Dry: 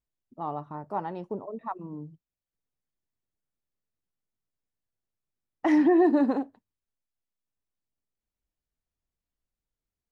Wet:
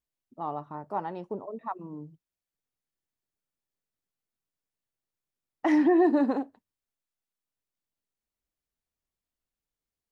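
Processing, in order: low shelf 150 Hz -6.5 dB

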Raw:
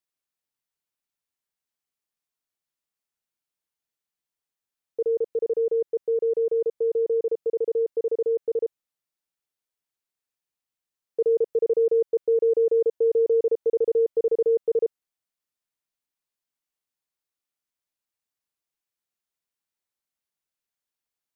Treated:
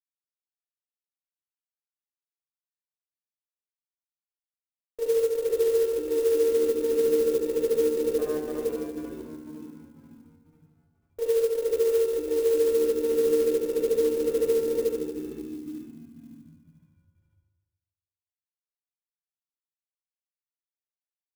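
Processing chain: 8.17–8.61 cycle switcher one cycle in 3, muted; HPF 290 Hz 24 dB/oct; limiter -27 dBFS, peak gain reduction 11.5 dB; crossover distortion -54 dBFS; added harmonics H 8 -24 dB, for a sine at -27 dBFS; air absorption 250 m; on a send: frequency-shifting echo 0.494 s, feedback 44%, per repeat -74 Hz, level -6 dB; on the sum: FDN reverb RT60 1.2 s, low-frequency decay 1×, high-frequency decay 0.65×, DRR -3.5 dB; clock jitter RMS 0.037 ms

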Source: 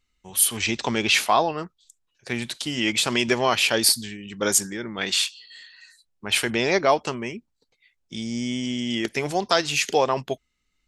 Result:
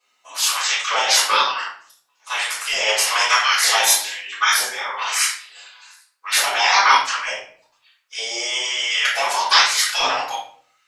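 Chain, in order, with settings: spectral gate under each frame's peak -15 dB weak; LFO high-pass saw up 1.1 Hz 650–1500 Hz; shoebox room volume 60 m³, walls mixed, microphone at 3.5 m

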